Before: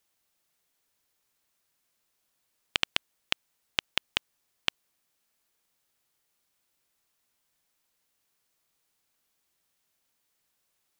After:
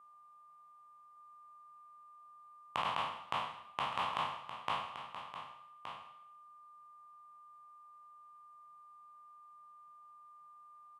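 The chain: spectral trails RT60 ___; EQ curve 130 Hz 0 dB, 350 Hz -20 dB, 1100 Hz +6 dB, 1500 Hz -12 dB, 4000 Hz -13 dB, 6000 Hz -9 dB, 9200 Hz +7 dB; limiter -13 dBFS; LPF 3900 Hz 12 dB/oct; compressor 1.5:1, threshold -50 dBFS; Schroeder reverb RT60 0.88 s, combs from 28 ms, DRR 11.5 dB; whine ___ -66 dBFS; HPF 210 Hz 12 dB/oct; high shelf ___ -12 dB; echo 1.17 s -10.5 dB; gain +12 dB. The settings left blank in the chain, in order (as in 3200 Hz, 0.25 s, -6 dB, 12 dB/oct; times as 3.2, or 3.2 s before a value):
0.52 s, 1200 Hz, 2000 Hz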